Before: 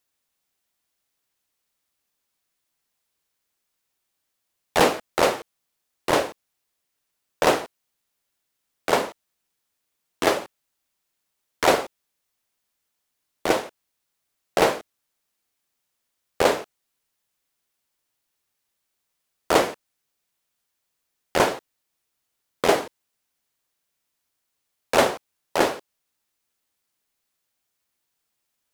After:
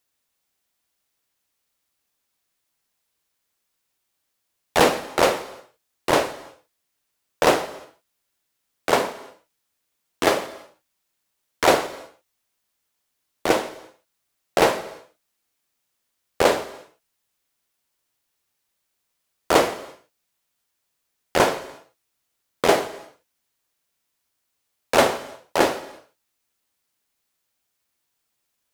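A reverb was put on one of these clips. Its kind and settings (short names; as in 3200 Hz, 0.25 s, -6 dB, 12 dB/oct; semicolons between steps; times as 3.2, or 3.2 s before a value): non-linear reverb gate 0.37 s falling, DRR 11.5 dB; gain +1.5 dB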